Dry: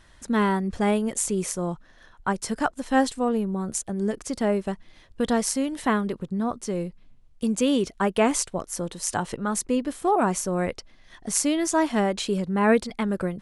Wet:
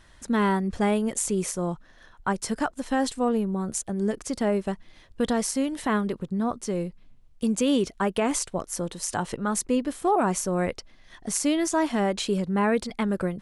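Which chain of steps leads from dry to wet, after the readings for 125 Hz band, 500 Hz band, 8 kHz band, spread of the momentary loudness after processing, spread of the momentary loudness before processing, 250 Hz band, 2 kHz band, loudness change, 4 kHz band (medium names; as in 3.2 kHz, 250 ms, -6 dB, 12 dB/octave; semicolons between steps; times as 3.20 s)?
-0.5 dB, -1.5 dB, -1.5 dB, 7 LU, 8 LU, -0.5 dB, -2.0 dB, -1.0 dB, -0.5 dB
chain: peak limiter -14 dBFS, peak gain reduction 7 dB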